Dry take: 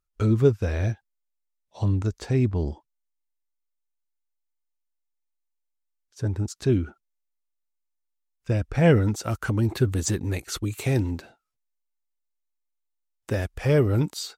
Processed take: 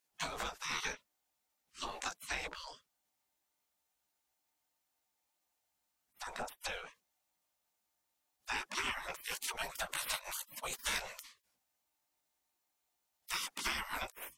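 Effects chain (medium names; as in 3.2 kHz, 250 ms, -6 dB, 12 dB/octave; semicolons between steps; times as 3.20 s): chorus voices 6, 1.3 Hz, delay 17 ms, depth 3 ms; peaking EQ 750 Hz +10.5 dB 0.39 oct; compression 5:1, threshold -26 dBFS, peak gain reduction 10.5 dB; spectral gate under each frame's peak -30 dB weak; loudspeaker Doppler distortion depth 0.14 ms; trim +13.5 dB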